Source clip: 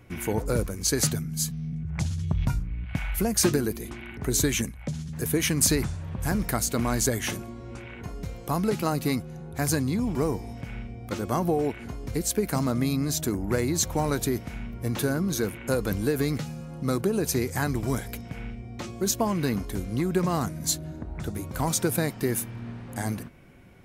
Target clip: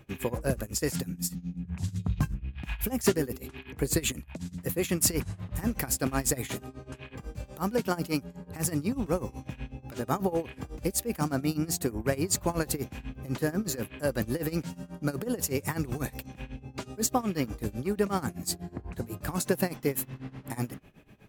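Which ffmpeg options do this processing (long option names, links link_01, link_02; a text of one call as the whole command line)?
ffmpeg -i in.wav -af "asetrate=49392,aresample=44100,tremolo=f=8.1:d=0.88" out.wav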